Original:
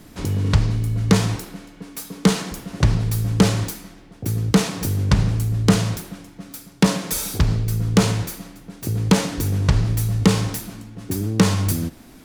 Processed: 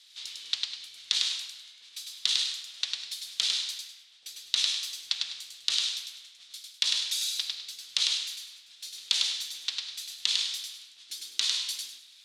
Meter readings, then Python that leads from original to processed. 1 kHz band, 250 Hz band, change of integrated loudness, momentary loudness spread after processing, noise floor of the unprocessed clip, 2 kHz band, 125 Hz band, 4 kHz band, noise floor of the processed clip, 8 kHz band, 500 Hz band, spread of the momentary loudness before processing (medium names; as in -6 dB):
-24.0 dB, under -40 dB, -8.0 dB, 17 LU, -46 dBFS, -9.0 dB, under -40 dB, +4.5 dB, -55 dBFS, -5.0 dB, under -35 dB, 17 LU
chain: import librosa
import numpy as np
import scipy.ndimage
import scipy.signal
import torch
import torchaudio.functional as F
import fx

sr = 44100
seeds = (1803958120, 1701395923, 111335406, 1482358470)

y = fx.wow_flutter(x, sr, seeds[0], rate_hz=2.1, depth_cents=92.0)
y = fx.ladder_bandpass(y, sr, hz=4100.0, resonance_pct=60)
y = fx.echo_feedback(y, sr, ms=101, feedback_pct=28, wet_db=-3.0)
y = y * 10.0 ** (8.0 / 20.0)